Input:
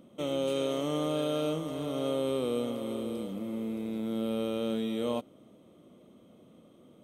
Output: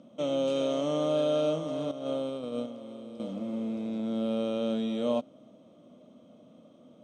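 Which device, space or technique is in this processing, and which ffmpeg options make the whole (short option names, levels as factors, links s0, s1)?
car door speaker: -filter_complex "[0:a]highpass=110,equalizer=f=250:t=q:w=4:g=5,equalizer=f=380:t=q:w=4:g=-7,equalizer=f=620:t=q:w=4:g=8,equalizer=f=2000:t=q:w=4:g=-5,equalizer=f=5500:t=q:w=4:g=4,lowpass=f=7300:w=0.5412,lowpass=f=7300:w=1.3066,asettb=1/sr,asplit=3[s0][s1][s2];[s0]atrim=end=1.914[s3];[s1]atrim=start=1.91:end=3.2,asetpts=PTS-STARTPTS,afade=t=in:d=0.004:c=qsin,afade=t=out:st=1.286:d=0.004:c=qsin,agate=range=0.316:threshold=0.0447:ratio=16:detection=peak[s4];[s2]atrim=start=3.196[s5];[s3][s4]acrossfade=d=0.004:c1=hsin:c2=qsin[s6];[s6][s5]acrossfade=d=0.004:c1=qsin:c2=hsin"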